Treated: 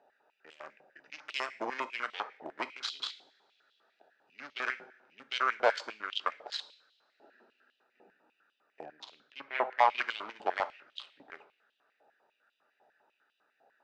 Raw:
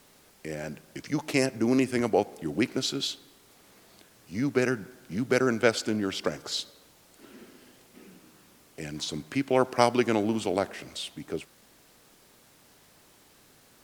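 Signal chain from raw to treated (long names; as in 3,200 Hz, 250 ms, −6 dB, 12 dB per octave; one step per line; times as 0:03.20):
adaptive Wiener filter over 41 samples
0:08.85–0:09.93: high-shelf EQ 3,100 Hz −11.5 dB
in parallel at −3 dB: downward compressor, threshold −36 dBFS, peak gain reduction 19 dB
on the sum: tube saturation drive 18 dB, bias 0.7
high-frequency loss of the air 150 metres
coupled-rooms reverb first 0.55 s, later 3.2 s, from −26 dB, DRR 11 dB
high-pass on a step sequencer 10 Hz 780–3,100 Hz
level +1.5 dB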